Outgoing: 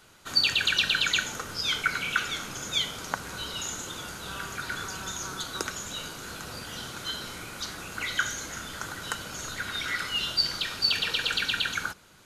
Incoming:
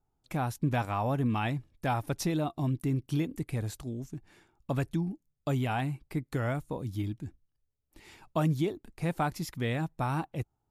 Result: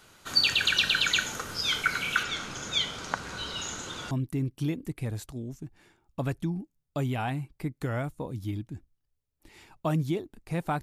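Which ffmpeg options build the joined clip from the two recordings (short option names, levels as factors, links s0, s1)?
-filter_complex "[0:a]asettb=1/sr,asplit=3[s0][s1][s2];[s0]atrim=end=2.234[s3];[s1]atrim=start=2.23:end=4.11,asetpts=PTS-STARTPTS,afade=t=in:d=0.004:c=qsin,afade=t=out:st=1.876:d=0.004:c=qsin,lowpass=6600[s4];[s2]atrim=start=4.106[s5];[s3][s4]acrossfade=d=0.004:c1=hsin:c2=qsin[s6];[s6][s5]acrossfade=d=0.004:c1=qsin:c2=hsin,apad=whole_dur=10.82,atrim=end=10.82,atrim=end=4.112[s7];[1:a]atrim=start=2.618:end=9.33[s8];[s7][s8]acrossfade=d=0.004:c1=hsin:c2=hsin"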